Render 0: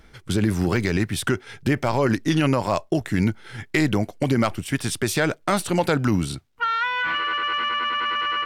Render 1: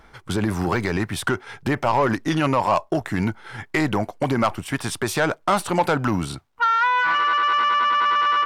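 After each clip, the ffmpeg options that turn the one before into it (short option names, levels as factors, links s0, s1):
-af "equalizer=f=960:w=0.96:g=11.5,acontrast=81,volume=0.355"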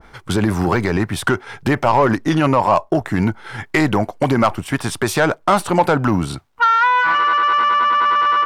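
-af "adynamicequalizer=threshold=0.0178:dfrequency=1600:dqfactor=0.7:tfrequency=1600:tqfactor=0.7:attack=5:release=100:ratio=0.375:range=3:mode=cutabove:tftype=highshelf,volume=1.88"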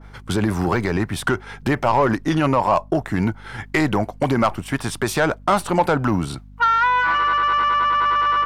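-af "aeval=exprs='val(0)+0.0126*(sin(2*PI*50*n/s)+sin(2*PI*2*50*n/s)/2+sin(2*PI*3*50*n/s)/3+sin(2*PI*4*50*n/s)/4+sin(2*PI*5*50*n/s)/5)':c=same,volume=0.708"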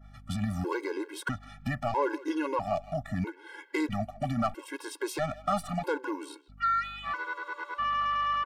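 -filter_complex "[0:a]asplit=2[s0][s1];[s1]adelay=160,highpass=300,lowpass=3400,asoftclip=type=hard:threshold=0.15,volume=0.158[s2];[s0][s2]amix=inputs=2:normalize=0,afftfilt=real='re*gt(sin(2*PI*0.77*pts/sr)*(1-2*mod(floor(b*sr/1024/280),2)),0)':imag='im*gt(sin(2*PI*0.77*pts/sr)*(1-2*mod(floor(b*sr/1024/280),2)),0)':win_size=1024:overlap=0.75,volume=0.355"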